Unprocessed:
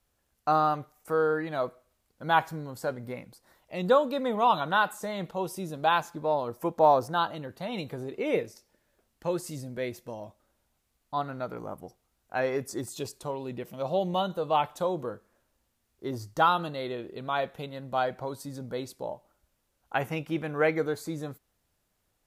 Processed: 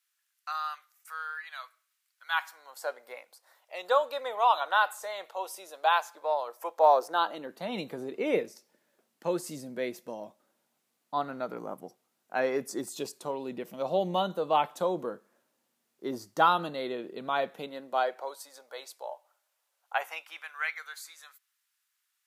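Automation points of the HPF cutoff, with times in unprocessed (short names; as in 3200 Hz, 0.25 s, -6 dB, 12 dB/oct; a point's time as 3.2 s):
HPF 24 dB/oct
2.26 s 1400 Hz
2.87 s 570 Hz
6.71 s 570 Hz
7.7 s 180 Hz
17.54 s 180 Hz
18.44 s 630 Hz
19.95 s 630 Hz
20.57 s 1300 Hz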